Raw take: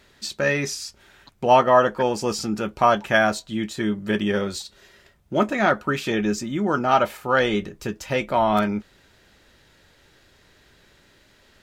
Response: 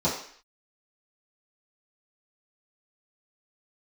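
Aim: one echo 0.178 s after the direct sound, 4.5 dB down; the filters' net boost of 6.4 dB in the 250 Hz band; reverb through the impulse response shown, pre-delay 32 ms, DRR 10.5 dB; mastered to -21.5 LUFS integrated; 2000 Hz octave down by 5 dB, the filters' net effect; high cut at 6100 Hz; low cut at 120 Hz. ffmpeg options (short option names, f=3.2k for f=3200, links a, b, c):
-filter_complex "[0:a]highpass=120,lowpass=6.1k,equalizer=f=250:t=o:g=8.5,equalizer=f=2k:t=o:g=-7,aecho=1:1:178:0.596,asplit=2[a][b];[1:a]atrim=start_sample=2205,adelay=32[c];[b][c]afir=irnorm=-1:irlink=0,volume=-23dB[d];[a][d]amix=inputs=2:normalize=0,volume=-3.5dB"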